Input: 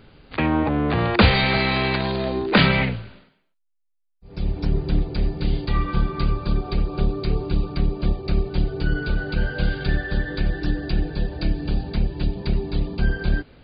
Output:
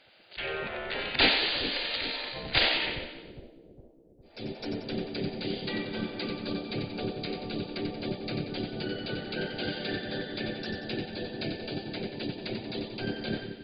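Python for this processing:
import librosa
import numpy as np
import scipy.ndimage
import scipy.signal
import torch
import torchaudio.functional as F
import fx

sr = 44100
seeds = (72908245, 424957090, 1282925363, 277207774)

p1 = fx.spec_gate(x, sr, threshold_db=-15, keep='weak')
p2 = fx.peak_eq(p1, sr, hz=1100.0, db=-12.5, octaves=0.71)
y = p2 + fx.echo_split(p2, sr, split_hz=470.0, low_ms=408, high_ms=91, feedback_pct=52, wet_db=-6, dry=0)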